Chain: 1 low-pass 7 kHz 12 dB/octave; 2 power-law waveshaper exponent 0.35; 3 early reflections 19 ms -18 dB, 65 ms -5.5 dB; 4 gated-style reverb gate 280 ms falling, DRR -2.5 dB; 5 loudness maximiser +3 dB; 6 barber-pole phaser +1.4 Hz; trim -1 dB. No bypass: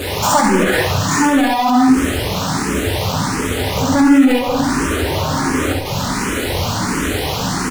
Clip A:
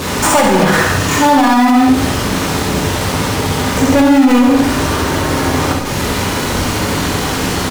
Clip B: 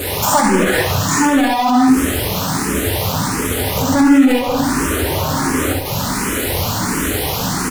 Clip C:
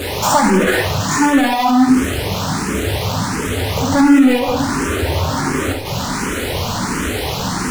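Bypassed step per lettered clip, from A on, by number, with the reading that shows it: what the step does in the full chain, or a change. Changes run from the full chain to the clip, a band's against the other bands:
6, crest factor change -3.5 dB; 1, 8 kHz band +3.0 dB; 3, momentary loudness spread change +1 LU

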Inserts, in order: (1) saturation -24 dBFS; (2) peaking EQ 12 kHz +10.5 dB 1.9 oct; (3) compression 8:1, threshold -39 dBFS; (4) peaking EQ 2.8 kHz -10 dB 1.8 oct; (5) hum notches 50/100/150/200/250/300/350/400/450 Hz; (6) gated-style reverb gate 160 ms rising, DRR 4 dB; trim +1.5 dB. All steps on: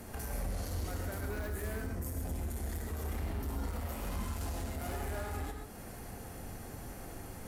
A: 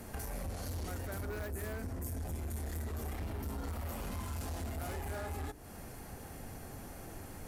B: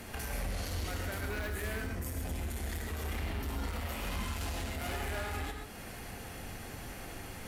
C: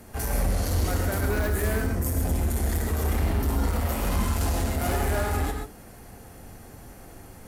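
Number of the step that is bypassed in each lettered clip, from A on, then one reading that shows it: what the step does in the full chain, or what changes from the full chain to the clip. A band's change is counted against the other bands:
6, loudness change -1.5 LU; 4, 4 kHz band +6.5 dB; 3, mean gain reduction 9.0 dB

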